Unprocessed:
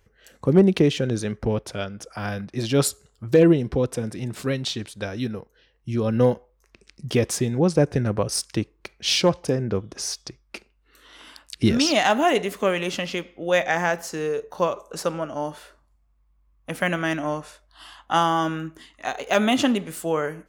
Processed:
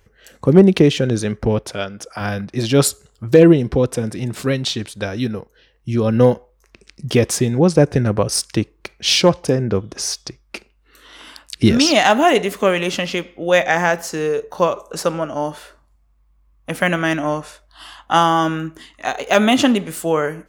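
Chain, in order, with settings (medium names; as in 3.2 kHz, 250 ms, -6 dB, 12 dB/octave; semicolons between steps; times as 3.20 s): 1.67–2.21 s: bass shelf 170 Hz -8 dB; trim +6 dB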